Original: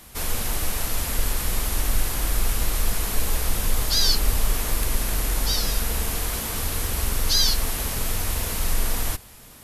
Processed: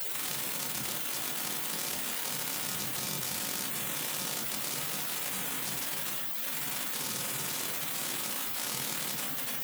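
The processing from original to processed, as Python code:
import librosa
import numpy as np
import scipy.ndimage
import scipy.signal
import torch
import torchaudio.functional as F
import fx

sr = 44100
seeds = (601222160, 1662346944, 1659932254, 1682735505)

p1 = np.sign(x) * np.sqrt(np.mean(np.square(x)))
p2 = fx.doppler_pass(p1, sr, speed_mps=22, closest_m=26.0, pass_at_s=4.17)
p3 = fx.peak_eq(p2, sr, hz=5700.0, db=9.5, octaves=1.3)
p4 = fx.comb_fb(p3, sr, f0_hz=180.0, decay_s=0.51, harmonics='all', damping=0.0, mix_pct=80)
p5 = fx.echo_multitap(p4, sr, ms=(42, 56, 162, 242, 342, 620), db=(-19.5, -16.0, -15.0, -19.0, -10.0, -19.5))
p6 = fx.spec_gate(p5, sr, threshold_db=-25, keep='weak')
p7 = (np.mod(10.0 ** (37.0 / 20.0) * p6 + 1.0, 2.0) - 1.0) / 10.0 ** (37.0 / 20.0)
p8 = p6 + (p7 * 10.0 ** (-12.0 / 20.0))
p9 = scipy.signal.sosfilt(scipy.signal.butter(2, 61.0, 'highpass', fs=sr, output='sos'), p8)
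p10 = fx.peak_eq(p9, sr, hz=160.0, db=7.5, octaves=1.1)
p11 = fx.room_shoebox(p10, sr, seeds[0], volume_m3=140.0, walls='furnished', distance_m=0.98)
y = fx.env_flatten(p11, sr, amount_pct=100)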